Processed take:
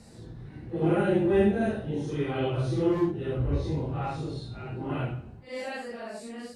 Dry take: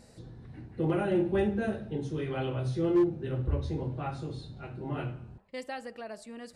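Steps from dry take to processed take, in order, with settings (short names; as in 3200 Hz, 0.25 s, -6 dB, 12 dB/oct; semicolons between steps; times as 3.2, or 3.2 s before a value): phase scrambler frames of 0.2 s; gain +4 dB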